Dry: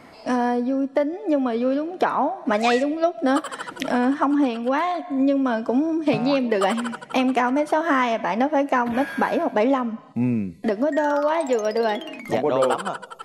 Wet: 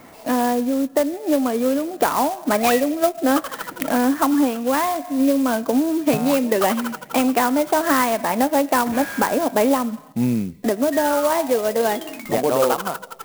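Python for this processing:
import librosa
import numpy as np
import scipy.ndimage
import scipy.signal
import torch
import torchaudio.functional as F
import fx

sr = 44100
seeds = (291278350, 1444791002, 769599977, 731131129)

y = fx.clock_jitter(x, sr, seeds[0], jitter_ms=0.05)
y = y * 10.0 ** (2.0 / 20.0)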